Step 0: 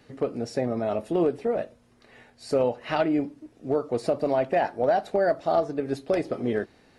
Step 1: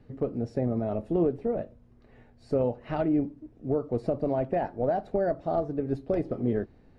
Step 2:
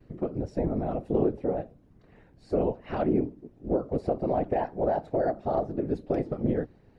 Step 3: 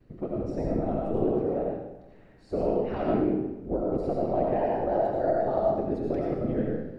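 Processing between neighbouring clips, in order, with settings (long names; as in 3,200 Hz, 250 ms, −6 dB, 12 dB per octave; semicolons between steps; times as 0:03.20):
spectral tilt −4 dB per octave; level −7.5 dB
pitch vibrato 0.31 Hz 21 cents; random phases in short frames
comb and all-pass reverb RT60 1 s, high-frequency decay 0.9×, pre-delay 45 ms, DRR −3 dB; level −3.5 dB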